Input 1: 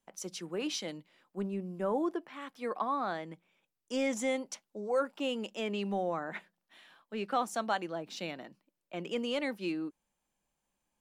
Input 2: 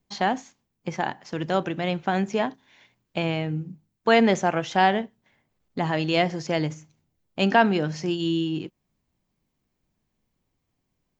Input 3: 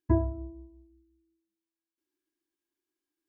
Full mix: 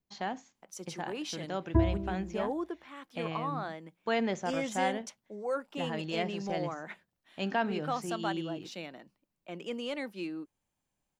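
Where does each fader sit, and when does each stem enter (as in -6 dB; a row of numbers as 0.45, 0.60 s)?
-3.0, -12.0, -0.5 dB; 0.55, 0.00, 1.65 s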